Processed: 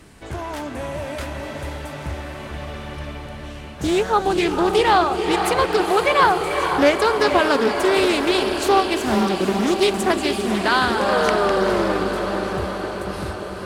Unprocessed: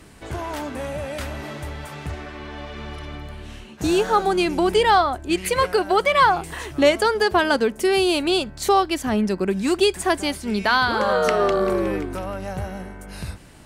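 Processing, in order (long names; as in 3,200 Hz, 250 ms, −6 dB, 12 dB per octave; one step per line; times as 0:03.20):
on a send: feedback delay with all-pass diffusion 479 ms, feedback 71%, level −6.5 dB
on the sum: highs frequency-modulated by the lows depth 0.27 ms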